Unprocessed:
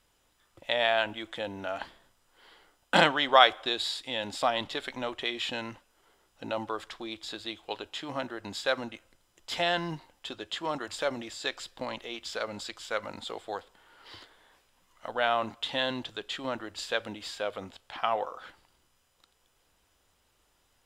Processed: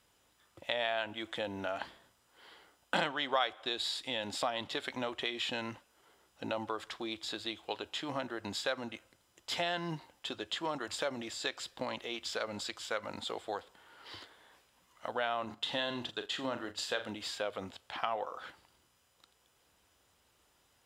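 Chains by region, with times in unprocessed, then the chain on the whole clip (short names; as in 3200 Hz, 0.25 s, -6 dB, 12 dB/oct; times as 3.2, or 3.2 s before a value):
15.45–17.11 notch 2300 Hz, Q 13 + flutter echo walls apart 7.1 m, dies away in 0.25 s + gate -46 dBFS, range -7 dB
whole clip: HPF 63 Hz; compressor 2.5:1, threshold -33 dBFS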